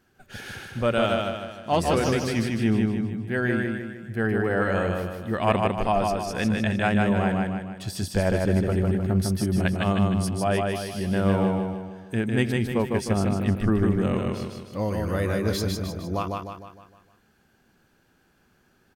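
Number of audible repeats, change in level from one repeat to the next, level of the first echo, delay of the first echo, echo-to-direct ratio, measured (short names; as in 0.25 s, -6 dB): 6, -6.5 dB, -3.0 dB, 0.153 s, -2.0 dB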